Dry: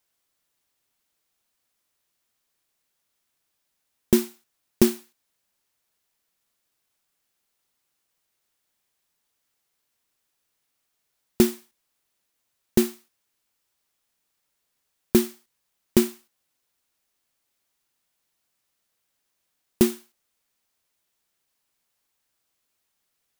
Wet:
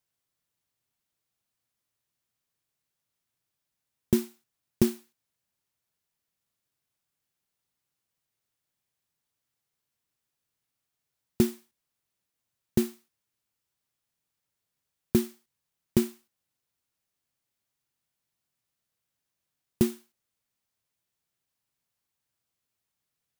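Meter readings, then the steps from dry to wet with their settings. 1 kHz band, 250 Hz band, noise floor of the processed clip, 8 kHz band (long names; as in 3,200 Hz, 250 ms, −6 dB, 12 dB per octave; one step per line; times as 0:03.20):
−8.0 dB, −4.5 dB, −85 dBFS, −8.0 dB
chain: parametric band 120 Hz +10.5 dB 1.4 octaves
level −8 dB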